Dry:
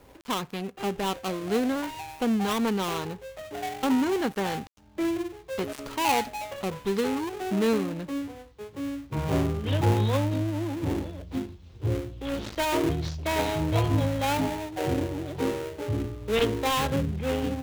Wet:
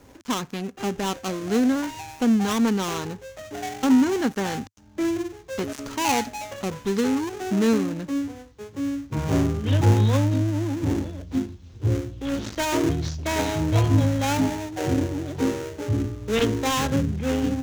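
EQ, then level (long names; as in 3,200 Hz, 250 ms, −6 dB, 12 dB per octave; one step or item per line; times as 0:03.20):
graphic EQ with 15 bands 100 Hz +6 dB, 250 Hz +7 dB, 1,600 Hz +3 dB, 6,300 Hz +8 dB
0.0 dB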